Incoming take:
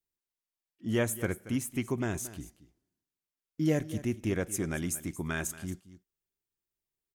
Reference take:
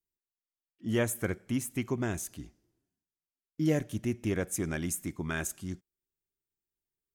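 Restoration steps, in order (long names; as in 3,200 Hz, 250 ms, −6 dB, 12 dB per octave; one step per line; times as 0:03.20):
echo removal 228 ms −16 dB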